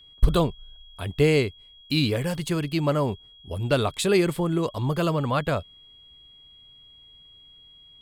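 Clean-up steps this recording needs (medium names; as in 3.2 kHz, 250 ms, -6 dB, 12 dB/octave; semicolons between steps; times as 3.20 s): band-stop 3.3 kHz, Q 30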